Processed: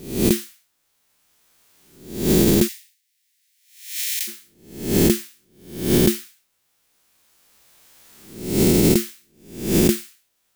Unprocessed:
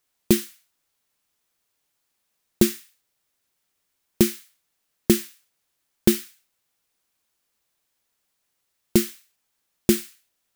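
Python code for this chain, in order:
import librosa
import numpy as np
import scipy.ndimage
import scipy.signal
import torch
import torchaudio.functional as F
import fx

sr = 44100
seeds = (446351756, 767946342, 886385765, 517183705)

y = fx.spec_swells(x, sr, rise_s=0.67)
y = fx.recorder_agc(y, sr, target_db=-4.5, rise_db_per_s=13.0, max_gain_db=30)
y = fx.cheby1_highpass(y, sr, hz=1900.0, order=4, at=(2.67, 4.27), fade=0.02)
y = F.gain(torch.from_numpy(y), -2.5).numpy()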